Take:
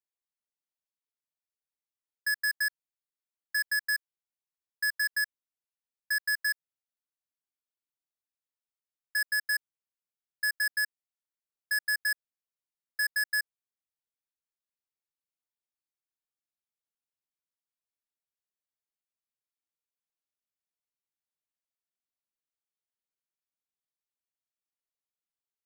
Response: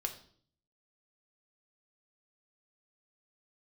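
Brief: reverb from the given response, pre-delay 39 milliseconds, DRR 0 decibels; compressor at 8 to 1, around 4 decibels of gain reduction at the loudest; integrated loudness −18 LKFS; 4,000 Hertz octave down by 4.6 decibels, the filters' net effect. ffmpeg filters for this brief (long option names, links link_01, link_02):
-filter_complex "[0:a]equalizer=frequency=4000:width_type=o:gain=-7,acompressor=threshold=-31dB:ratio=8,asplit=2[link_01][link_02];[1:a]atrim=start_sample=2205,adelay=39[link_03];[link_02][link_03]afir=irnorm=-1:irlink=0,volume=-1dB[link_04];[link_01][link_04]amix=inputs=2:normalize=0,volume=13.5dB"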